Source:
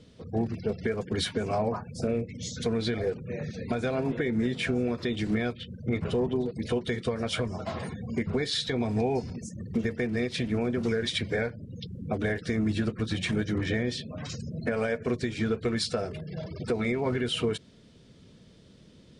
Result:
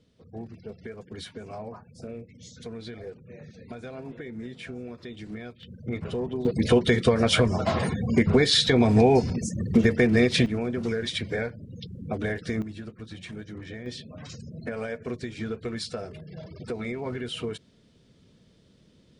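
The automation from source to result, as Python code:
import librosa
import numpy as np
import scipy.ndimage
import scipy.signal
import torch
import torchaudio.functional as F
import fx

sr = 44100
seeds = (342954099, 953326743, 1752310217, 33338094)

y = fx.gain(x, sr, db=fx.steps((0.0, -10.5), (5.63, -3.0), (6.45, 9.0), (10.46, -0.5), (12.62, -11.0), (13.86, -4.5)))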